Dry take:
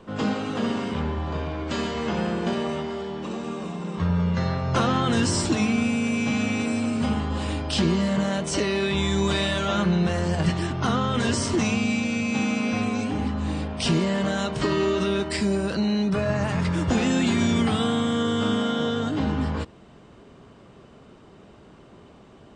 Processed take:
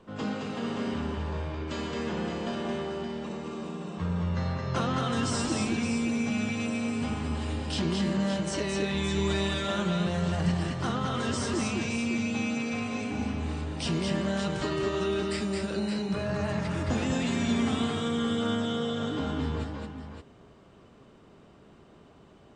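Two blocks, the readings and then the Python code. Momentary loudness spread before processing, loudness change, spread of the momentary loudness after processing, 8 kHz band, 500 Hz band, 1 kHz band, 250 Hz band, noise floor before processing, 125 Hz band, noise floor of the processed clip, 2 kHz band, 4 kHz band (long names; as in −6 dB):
6 LU, −5.5 dB, 6 LU, −5.5 dB, −5.0 dB, −6.0 dB, −5.5 dB, −50 dBFS, −5.5 dB, −55 dBFS, −5.5 dB, −5.5 dB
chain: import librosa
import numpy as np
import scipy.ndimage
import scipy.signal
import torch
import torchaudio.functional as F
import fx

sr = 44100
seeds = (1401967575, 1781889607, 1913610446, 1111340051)

y = fx.echo_multitap(x, sr, ms=(219, 569), db=(-3.5, -8.0))
y = y * librosa.db_to_amplitude(-7.5)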